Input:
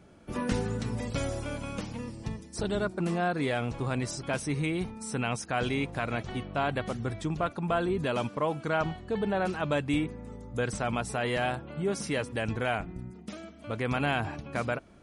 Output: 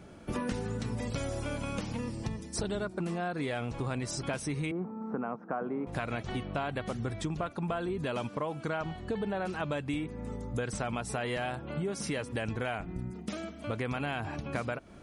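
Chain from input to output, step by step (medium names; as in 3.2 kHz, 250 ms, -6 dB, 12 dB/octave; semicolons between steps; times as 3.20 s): 4.71–5.87 s: Chebyshev band-pass 180–1300 Hz, order 3; compression 6:1, threshold -36 dBFS, peak gain reduction 12.5 dB; trim +5 dB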